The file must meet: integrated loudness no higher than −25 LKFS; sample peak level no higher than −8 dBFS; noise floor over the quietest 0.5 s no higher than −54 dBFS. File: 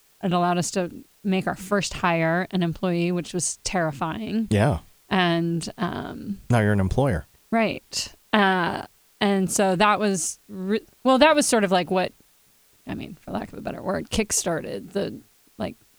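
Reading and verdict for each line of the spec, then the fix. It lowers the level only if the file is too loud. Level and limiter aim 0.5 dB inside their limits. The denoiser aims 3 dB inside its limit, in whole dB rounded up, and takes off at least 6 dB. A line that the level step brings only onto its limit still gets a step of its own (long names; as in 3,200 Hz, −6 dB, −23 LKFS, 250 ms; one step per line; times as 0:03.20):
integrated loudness −23.5 LKFS: out of spec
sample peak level −2.5 dBFS: out of spec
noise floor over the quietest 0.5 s −59 dBFS: in spec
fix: level −2 dB
brickwall limiter −8.5 dBFS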